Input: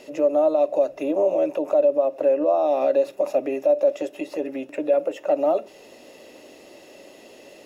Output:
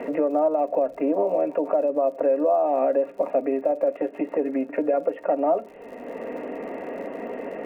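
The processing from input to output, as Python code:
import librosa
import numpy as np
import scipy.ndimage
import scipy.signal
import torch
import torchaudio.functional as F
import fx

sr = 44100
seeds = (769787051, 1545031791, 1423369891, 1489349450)

y = scipy.signal.sosfilt(scipy.signal.butter(6, 2200.0, 'lowpass', fs=sr, output='sos'), x)
y = y + 0.56 * np.pad(y, (int(4.3 * sr / 1000.0), 0))[:len(y)]
y = fx.dmg_crackle(y, sr, seeds[0], per_s=86.0, level_db=-46.0)
y = fx.band_squash(y, sr, depth_pct=70)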